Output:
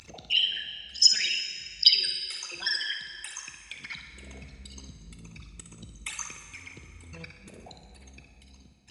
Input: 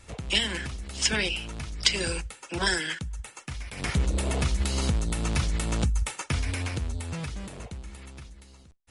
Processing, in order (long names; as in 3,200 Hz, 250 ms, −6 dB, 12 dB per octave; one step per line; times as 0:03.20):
spectral envelope exaggerated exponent 3
in parallel at +2.5 dB: downward compressor, threshold −33 dBFS, peak gain reduction 15 dB
on the sum: resonant band-pass 4,800 Hz, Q 2.4
on a send: flutter between parallel walls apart 10.4 metres, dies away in 0.4 s
on the sum: upward compression, threshold −40 dBFS
dense smooth reverb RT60 3.2 s, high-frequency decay 0.65×, DRR 6 dB
level +6 dB